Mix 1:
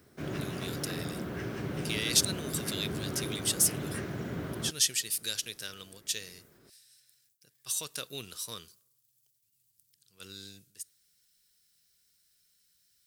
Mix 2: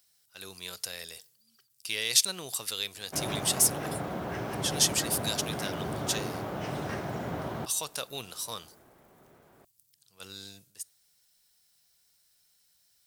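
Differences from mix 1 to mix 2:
background: entry +2.95 s
master: add drawn EQ curve 390 Hz 0 dB, 800 Hz +13 dB, 1,500 Hz +2 dB

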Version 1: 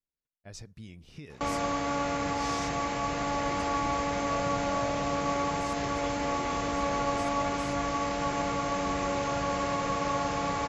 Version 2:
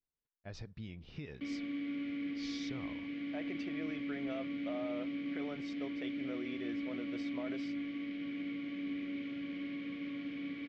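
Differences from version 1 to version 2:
background: add formant filter i
master: add low-pass filter 4,300 Hz 24 dB per octave

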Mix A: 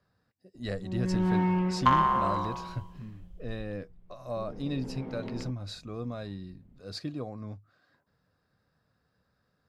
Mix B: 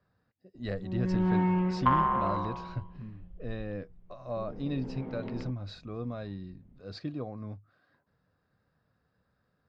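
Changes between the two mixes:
second sound: add high-frequency loss of the air 310 metres
master: add high-frequency loss of the air 170 metres

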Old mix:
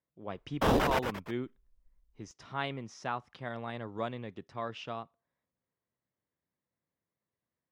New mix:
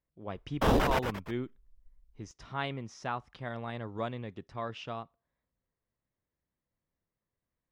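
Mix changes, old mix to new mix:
speech: remove high-pass filter 85 Hz
master: add low-shelf EQ 72 Hz +8 dB

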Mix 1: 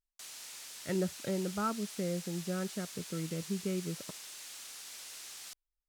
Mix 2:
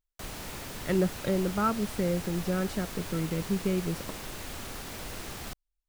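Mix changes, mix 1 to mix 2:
speech +6.5 dB
background: remove resonant band-pass 6,900 Hz, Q 0.8

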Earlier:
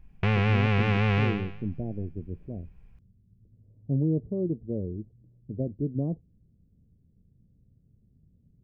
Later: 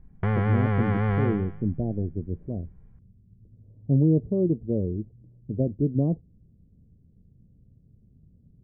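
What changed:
speech +5.5 dB
master: add Savitzky-Golay smoothing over 41 samples

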